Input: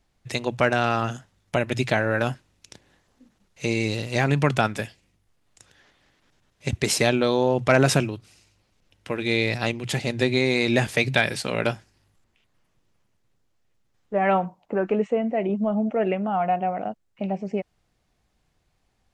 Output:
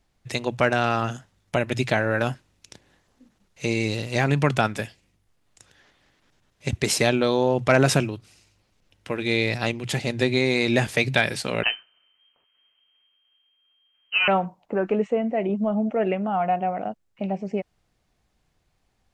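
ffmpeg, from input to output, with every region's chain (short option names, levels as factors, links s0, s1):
-filter_complex "[0:a]asettb=1/sr,asplit=3[s0][s1][s2];[s0]atrim=end=11.634[s3];[s1]atrim=start=11.63:end=14.28,asetpts=PTS-STARTPTS,afade=t=in:d=0.004:c=qsin,afade=t=out:st=2.646:d=0.004:c=qsin,bandreject=f=2400:w=28,acrusher=bits=3:mode=log:mix=0:aa=0.000001,lowpass=f=2700:t=q:w=0.5098,lowpass=f=2700:t=q:w=0.6013,lowpass=f=2700:t=q:w=0.9,lowpass=f=2700:t=q:w=2.563,afreqshift=-3200[s4];[s2]atrim=start=14.276[s5];[s3][s4]acrossfade=d=0.004:c1=hsin:c2=qsin[s6];[s6][s5]acrossfade=d=0.004:c1=qsin:c2=hsin"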